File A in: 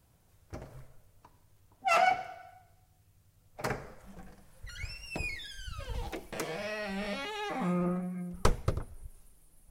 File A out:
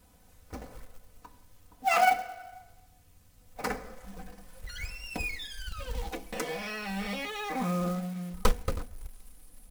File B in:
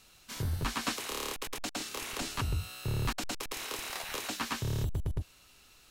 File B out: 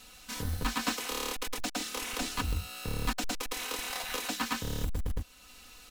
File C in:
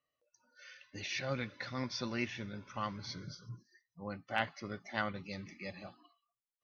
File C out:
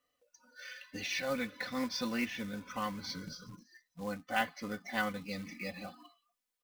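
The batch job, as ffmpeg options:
-filter_complex "[0:a]aecho=1:1:4:0.82,asplit=2[s0][s1];[s1]acompressor=threshold=0.00398:ratio=5,volume=1.19[s2];[s0][s2]amix=inputs=2:normalize=0,acrusher=bits=4:mode=log:mix=0:aa=0.000001,volume=0.794"

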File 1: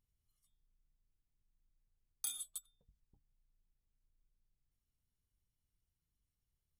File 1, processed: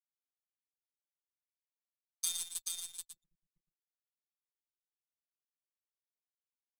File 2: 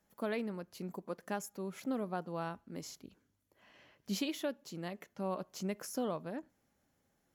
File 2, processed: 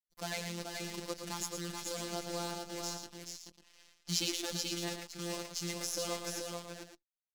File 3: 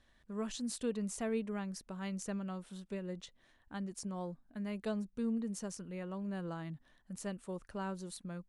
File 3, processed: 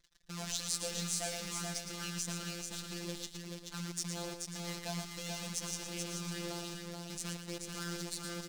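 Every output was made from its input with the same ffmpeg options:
-filter_complex "[0:a]acrusher=bits=8:dc=4:mix=0:aa=0.000001,equalizer=f=5600:w=0.57:g=13.5,anlmdn=0.0000631,asplit=2[s0][s1];[s1]aecho=0:1:114:0.422[s2];[s0][s2]amix=inputs=2:normalize=0,afftfilt=real='hypot(re,im)*cos(PI*b)':imag='0':win_size=1024:overlap=0.75,asplit=2[s3][s4];[s4]aecho=0:1:432:0.596[s5];[s3][s5]amix=inputs=2:normalize=0"

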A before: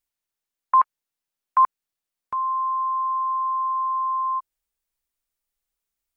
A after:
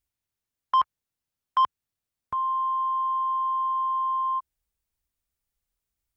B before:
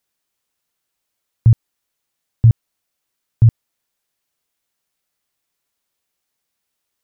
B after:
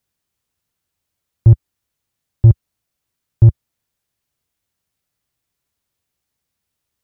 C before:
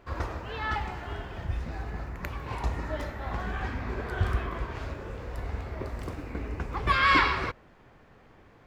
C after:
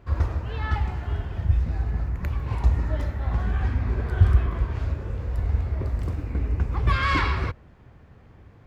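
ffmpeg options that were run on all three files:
-af "acontrast=67,asoftclip=type=tanh:threshold=0.501,equalizer=f=77:w=0.49:g=14.5,volume=0.376"

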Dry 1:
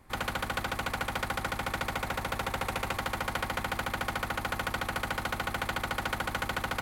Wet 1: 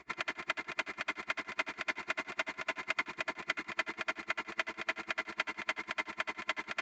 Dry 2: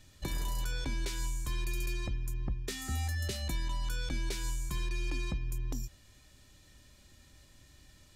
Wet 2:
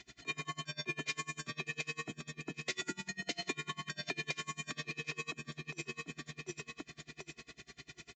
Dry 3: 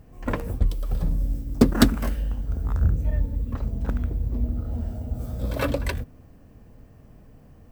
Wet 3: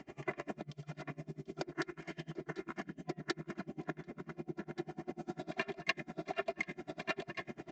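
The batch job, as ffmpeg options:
-af "lowshelf=f=250:g=-6.5,aecho=1:1:740|1480|2220|2960|3700:0.473|0.213|0.0958|0.0431|0.0194,acompressor=threshold=0.00891:ratio=8,afreqshift=110,aeval=exprs='val(0)+0.000501*(sin(2*PI*60*n/s)+sin(2*PI*2*60*n/s)/2+sin(2*PI*3*60*n/s)/3+sin(2*PI*4*60*n/s)/4+sin(2*PI*5*60*n/s)/5)':c=same,highpass=90,bandreject=f=117.2:t=h:w=4,bandreject=f=234.4:t=h:w=4,bandreject=f=351.6:t=h:w=4,bandreject=f=468.8:t=h:w=4,bandreject=f=586:t=h:w=4,bandreject=f=703.2:t=h:w=4,bandreject=f=820.4:t=h:w=4,bandreject=f=937.6:t=h:w=4,bandreject=f=1054.8:t=h:w=4,bandreject=f=1172:t=h:w=4,bandreject=f=1289.2:t=h:w=4,bandreject=f=1406.4:t=h:w=4,bandreject=f=1523.6:t=h:w=4,bandreject=f=1640.8:t=h:w=4,bandreject=f=1758:t=h:w=4,bandreject=f=1875.2:t=h:w=4,bandreject=f=1992.4:t=h:w=4,bandreject=f=2109.6:t=h:w=4,bandreject=f=2226.8:t=h:w=4,bandreject=f=2344:t=h:w=4,bandreject=f=2461.2:t=h:w=4,bandreject=f=2578.4:t=h:w=4,aresample=16000,aresample=44100,equalizer=f=2100:w=2.1:g=10.5,aecho=1:1:2.9:0.65,aeval=exprs='val(0)*pow(10,-30*(0.5-0.5*cos(2*PI*10*n/s))/20)':c=same,volume=2.66"

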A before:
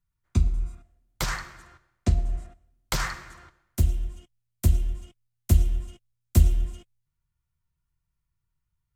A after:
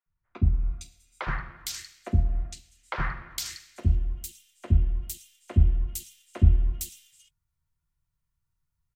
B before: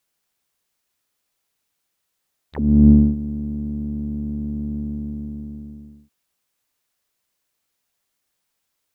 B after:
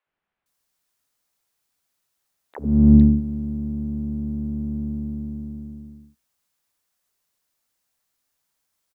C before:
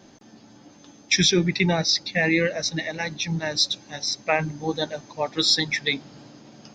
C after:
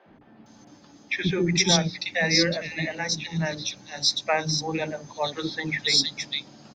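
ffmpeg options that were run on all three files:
-filter_complex "[0:a]bandreject=f=60:t=h:w=6,bandreject=f=120:t=h:w=6,bandreject=f=180:t=h:w=6,bandreject=f=240:t=h:w=6,acrossover=split=400|2700[s0][s1][s2];[s0]adelay=60[s3];[s2]adelay=460[s4];[s3][s1][s4]amix=inputs=3:normalize=0"

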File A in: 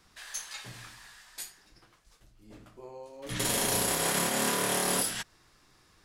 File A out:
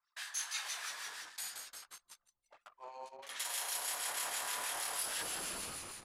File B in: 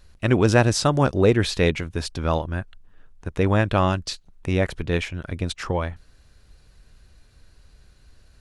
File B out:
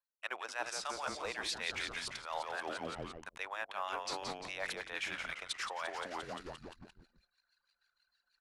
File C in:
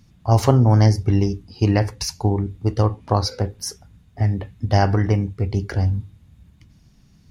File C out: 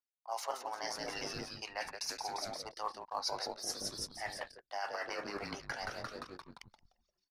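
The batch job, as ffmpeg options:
-filter_complex "[0:a]highpass=f=750:w=0.5412,highpass=f=750:w=1.3066,asplit=9[s0][s1][s2][s3][s4][s5][s6][s7][s8];[s1]adelay=174,afreqshift=-130,volume=0.335[s9];[s2]adelay=348,afreqshift=-260,volume=0.211[s10];[s3]adelay=522,afreqshift=-390,volume=0.133[s11];[s4]adelay=696,afreqshift=-520,volume=0.0841[s12];[s5]adelay=870,afreqshift=-650,volume=0.0525[s13];[s6]adelay=1044,afreqshift=-780,volume=0.0331[s14];[s7]adelay=1218,afreqshift=-910,volume=0.0209[s15];[s8]adelay=1392,afreqshift=-1040,volume=0.0132[s16];[s0][s9][s10][s11][s12][s13][s14][s15][s16]amix=inputs=9:normalize=0,areverse,acompressor=threshold=0.00794:ratio=6,areverse,acrossover=split=1500[s17][s18];[s17]aeval=exprs='val(0)*(1-0.5/2+0.5/2*cos(2*PI*6.3*n/s))':c=same[s19];[s18]aeval=exprs='val(0)*(1-0.5/2-0.5/2*cos(2*PI*6.3*n/s))':c=same[s20];[s19][s20]amix=inputs=2:normalize=0,asplit=2[s21][s22];[s22]acrusher=bits=4:mode=log:mix=0:aa=0.000001,volume=0.251[s23];[s21][s23]amix=inputs=2:normalize=0,anlmdn=0.000158,aresample=32000,aresample=44100,volume=1.78"

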